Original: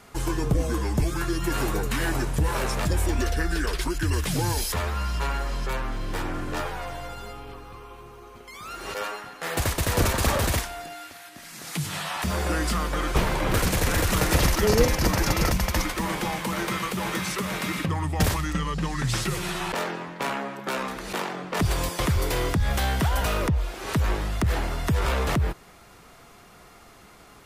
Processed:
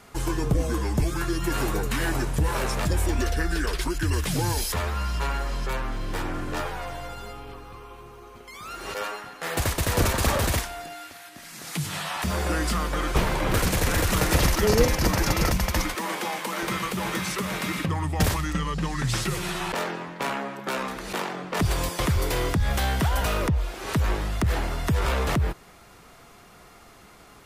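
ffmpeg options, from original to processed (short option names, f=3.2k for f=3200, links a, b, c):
-filter_complex "[0:a]asettb=1/sr,asplit=3[a][b][c];[a]atrim=end=15.954[d];[b]atrim=start=15.95:end=16.63,asetpts=PTS-STARTPTS,afade=t=in:d=0.004:c=qsin,afade=t=out:st=0.676:d=0.004:c=qsin,highpass=310[e];[c]atrim=start=16.626[f];[d][e]acrossfade=d=0.004:c1=hsin:c2=qsin[g];[g][f]acrossfade=d=0.004:c1=qsin:c2=hsin"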